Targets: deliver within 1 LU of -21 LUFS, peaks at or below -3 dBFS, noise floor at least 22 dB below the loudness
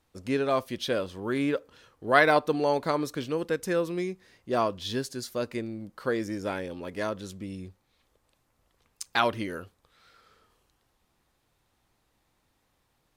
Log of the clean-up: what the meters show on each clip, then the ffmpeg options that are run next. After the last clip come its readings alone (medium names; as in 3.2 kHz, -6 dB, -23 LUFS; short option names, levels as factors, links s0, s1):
loudness -29.0 LUFS; peak level -6.0 dBFS; loudness target -21.0 LUFS
-> -af "volume=2.51,alimiter=limit=0.708:level=0:latency=1"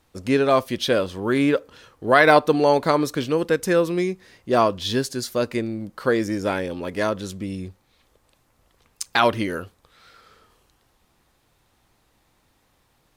loudness -21.5 LUFS; peak level -3.0 dBFS; noise floor -65 dBFS